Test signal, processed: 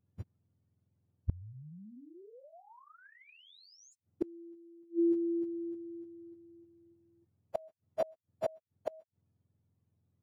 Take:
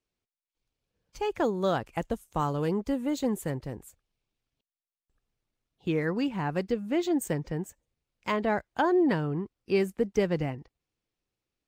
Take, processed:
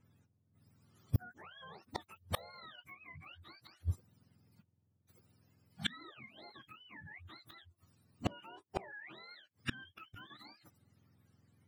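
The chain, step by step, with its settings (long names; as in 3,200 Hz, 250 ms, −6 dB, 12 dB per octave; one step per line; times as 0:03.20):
frequency axis turned over on the octave scale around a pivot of 780 Hz
brickwall limiter −24 dBFS
gate with flip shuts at −35 dBFS, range −35 dB
level +15 dB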